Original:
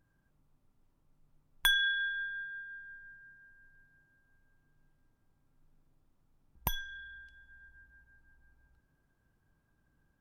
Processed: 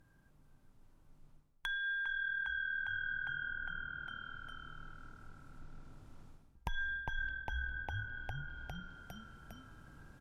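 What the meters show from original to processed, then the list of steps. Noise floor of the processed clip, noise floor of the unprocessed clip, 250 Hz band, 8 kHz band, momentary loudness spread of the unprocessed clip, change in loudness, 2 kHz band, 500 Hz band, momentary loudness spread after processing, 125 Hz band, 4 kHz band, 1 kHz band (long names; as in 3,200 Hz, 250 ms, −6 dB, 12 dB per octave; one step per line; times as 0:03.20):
−66 dBFS, −75 dBFS, +5.0 dB, below −15 dB, 22 LU, −7.0 dB, −0.5 dB, +3.0 dB, 21 LU, +7.0 dB, −12.5 dB, +2.5 dB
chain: speech leveller within 5 dB 2 s
echo with shifted repeats 405 ms, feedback 58%, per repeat −39 Hz, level −10 dB
reversed playback
downward compressor 8 to 1, threshold −45 dBFS, peak gain reduction 23 dB
reversed playback
treble cut that deepens with the level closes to 1,900 Hz, closed at −49 dBFS
level +11.5 dB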